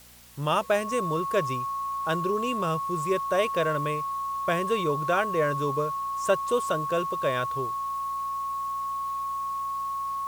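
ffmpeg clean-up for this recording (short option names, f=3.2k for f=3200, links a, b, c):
-af "bandreject=f=59.8:t=h:w=4,bandreject=f=119.6:t=h:w=4,bandreject=f=179.4:t=h:w=4,bandreject=f=239.2:t=h:w=4,bandreject=f=1.1k:w=30,afwtdn=0.0025"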